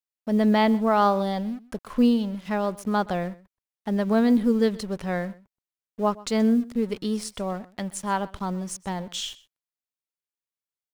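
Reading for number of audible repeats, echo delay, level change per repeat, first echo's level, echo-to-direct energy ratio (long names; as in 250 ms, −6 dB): 1, 126 ms, repeats not evenly spaced, −21.0 dB, −21.0 dB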